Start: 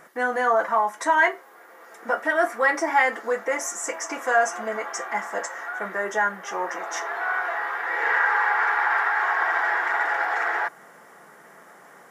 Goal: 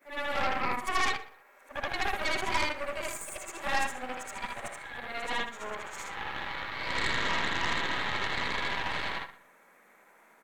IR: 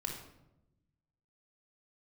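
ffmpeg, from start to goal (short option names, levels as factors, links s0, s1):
-filter_complex "[0:a]afftfilt=real='re':imag='-im':win_size=8192:overlap=0.75,bandreject=f=131.1:t=h:w=4,bandreject=f=262.2:t=h:w=4,bandreject=f=393.3:t=h:w=4,bandreject=f=524.4:t=h:w=4,bandreject=f=655.5:t=h:w=4,bandreject=f=786.6:t=h:w=4,bandreject=f=917.7:t=h:w=4,bandreject=f=1048.8:t=h:w=4,bandreject=f=1179.9:t=h:w=4,bandreject=f=1311:t=h:w=4,bandreject=f=1442.1:t=h:w=4,bandreject=f=1573.2:t=h:w=4,bandreject=f=1704.3:t=h:w=4,bandreject=f=1835.4:t=h:w=4,bandreject=f=1966.5:t=h:w=4,bandreject=f=2097.6:t=h:w=4,bandreject=f=2228.7:t=h:w=4,bandreject=f=2359.8:t=h:w=4,bandreject=f=2490.9:t=h:w=4,bandreject=f=2622:t=h:w=4,bandreject=f=2753.1:t=h:w=4,bandreject=f=2884.2:t=h:w=4,bandreject=f=3015.3:t=h:w=4,bandreject=f=3146.4:t=h:w=4,bandreject=f=3277.5:t=h:w=4,bandreject=f=3408.6:t=h:w=4,bandreject=f=3539.7:t=h:w=4,bandreject=f=3670.8:t=h:w=4,bandreject=f=3801.9:t=h:w=4,bandreject=f=3933:t=h:w=4,bandreject=f=4064.1:t=h:w=4,bandreject=f=4195.2:t=h:w=4,bandreject=f=4326.3:t=h:w=4,bandreject=f=4457.4:t=h:w=4,bandreject=f=4588.5:t=h:w=4,bandreject=f=4719.6:t=h:w=4,bandreject=f=4850.7:t=h:w=4,bandreject=f=4981.8:t=h:w=4,asetrate=51156,aresample=44100,aeval=exprs='0.251*(cos(1*acos(clip(val(0)/0.251,-1,1)))-cos(1*PI/2))+0.0708*(cos(6*acos(clip(val(0)/0.251,-1,1)))-cos(6*PI/2))':c=same,asplit=2[s0][s1];[s1]adelay=120,lowpass=f=4100:p=1,volume=0.126,asplit=2[s2][s3];[s3]adelay=120,lowpass=f=4100:p=1,volume=0.27[s4];[s2][s4]amix=inputs=2:normalize=0[s5];[s0][s5]amix=inputs=2:normalize=0,volume=0.473"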